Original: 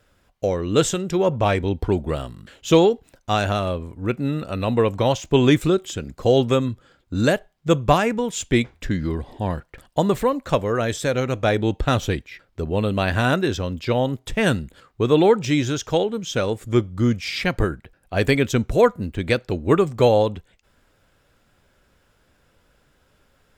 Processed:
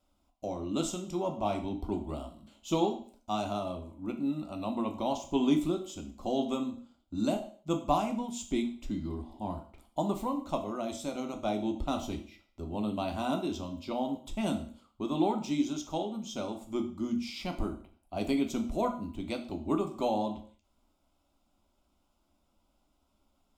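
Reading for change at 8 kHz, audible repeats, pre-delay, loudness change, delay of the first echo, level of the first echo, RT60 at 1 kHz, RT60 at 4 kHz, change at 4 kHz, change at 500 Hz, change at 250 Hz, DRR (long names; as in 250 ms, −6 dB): −12.0 dB, no echo audible, 9 ms, −12.5 dB, no echo audible, no echo audible, 0.45 s, 0.50 s, −13.5 dB, −15.0 dB, −9.0 dB, 4.0 dB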